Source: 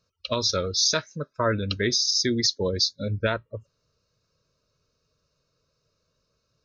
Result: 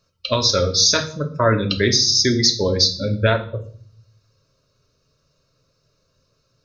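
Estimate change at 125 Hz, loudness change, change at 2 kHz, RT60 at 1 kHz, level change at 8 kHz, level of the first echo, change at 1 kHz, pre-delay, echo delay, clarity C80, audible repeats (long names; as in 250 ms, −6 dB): +8.5 dB, +7.0 dB, +6.5 dB, 0.45 s, can't be measured, no echo audible, +7.0 dB, 3 ms, no echo audible, 17.0 dB, no echo audible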